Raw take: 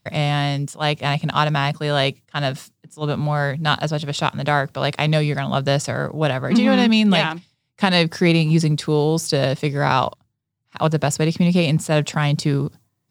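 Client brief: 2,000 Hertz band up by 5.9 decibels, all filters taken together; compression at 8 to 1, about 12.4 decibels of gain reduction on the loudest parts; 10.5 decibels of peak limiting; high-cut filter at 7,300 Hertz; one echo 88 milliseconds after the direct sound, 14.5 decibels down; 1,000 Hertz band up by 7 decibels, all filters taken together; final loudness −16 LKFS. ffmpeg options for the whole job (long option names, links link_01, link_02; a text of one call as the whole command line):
ffmpeg -i in.wav -af "lowpass=7300,equalizer=frequency=1000:width_type=o:gain=8,equalizer=frequency=2000:width_type=o:gain=5,acompressor=threshold=-19dB:ratio=8,alimiter=limit=-14dB:level=0:latency=1,aecho=1:1:88:0.188,volume=10.5dB" out.wav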